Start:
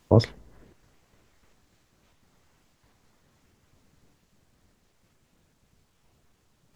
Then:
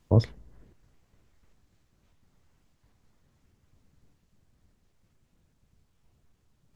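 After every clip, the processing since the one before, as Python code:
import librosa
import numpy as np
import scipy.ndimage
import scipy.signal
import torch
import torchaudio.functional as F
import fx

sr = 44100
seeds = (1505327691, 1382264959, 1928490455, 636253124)

y = fx.low_shelf(x, sr, hz=190.0, db=10.0)
y = y * librosa.db_to_amplitude(-8.0)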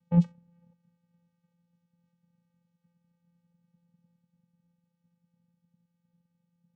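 y = fx.vocoder(x, sr, bands=4, carrier='square', carrier_hz=172.0)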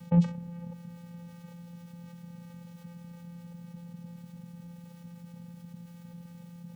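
y = fx.env_flatten(x, sr, amount_pct=50)
y = y * librosa.db_to_amplitude(-1.5)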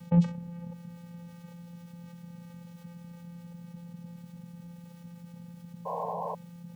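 y = fx.spec_paint(x, sr, seeds[0], shape='noise', start_s=5.85, length_s=0.5, low_hz=430.0, high_hz=1100.0, level_db=-34.0)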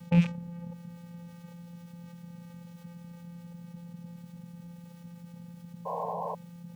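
y = fx.rattle_buzz(x, sr, strikes_db=-31.0, level_db=-27.0)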